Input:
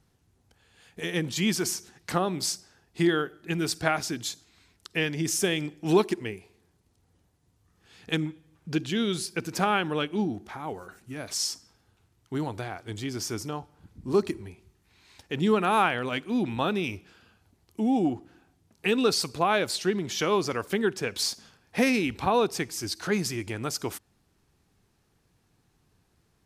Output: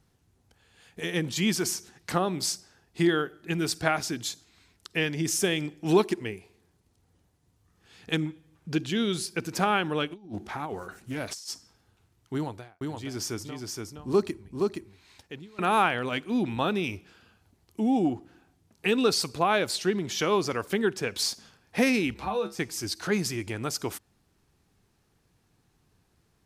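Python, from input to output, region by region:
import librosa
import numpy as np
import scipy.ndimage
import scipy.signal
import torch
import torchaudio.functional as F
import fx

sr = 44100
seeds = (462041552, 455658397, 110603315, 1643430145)

y = fx.chain(x, sr, fx.over_compress(threshold_db=-35.0, ratio=-0.5),
    fx.doppler_dist(depth_ms=0.21), at=(10.11, 11.5))
y = fx.chain(y, sr, fx.tremolo(hz=1.1, depth=0.98),
    fx.echo_single(ms=470, db=-3.5), at=(12.34, 15.59))
y = fx.chain(y, sr, fx.comb_fb(f0_hz=69.0, decay_s=0.21, harmonics='odd', damping=0.0, mix_pct=90),
    fx.band_squash(depth_pct=40), at=(22.14, 22.59))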